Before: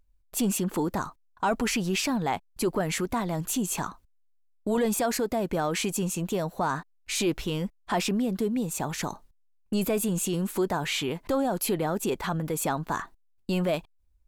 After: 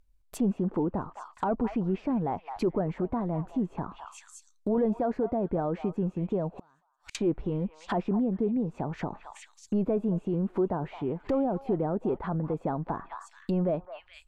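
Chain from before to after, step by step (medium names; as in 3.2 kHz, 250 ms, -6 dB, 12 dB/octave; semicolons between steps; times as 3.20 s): repeats whose band climbs or falls 214 ms, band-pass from 950 Hz, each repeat 1.4 oct, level -9.5 dB; 6.56–7.15 s: inverted gate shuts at -29 dBFS, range -36 dB; low-pass that closes with the level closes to 750 Hz, closed at -26.5 dBFS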